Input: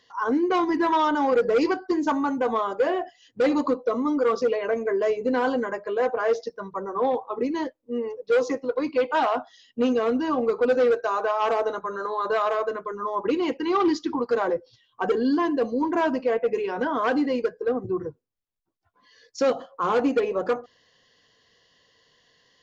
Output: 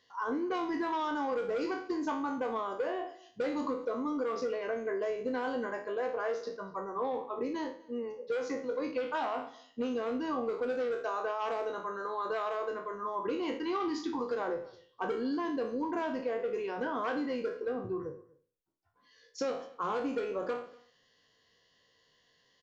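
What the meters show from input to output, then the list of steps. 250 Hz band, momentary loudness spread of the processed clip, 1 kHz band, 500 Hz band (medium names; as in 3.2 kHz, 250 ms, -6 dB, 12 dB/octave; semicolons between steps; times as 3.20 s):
-10.5 dB, 6 LU, -9.5 dB, -10.5 dB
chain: spectral sustain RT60 0.41 s; compression, threshold -21 dBFS, peak gain reduction 6 dB; delay 243 ms -23.5 dB; trim -8.5 dB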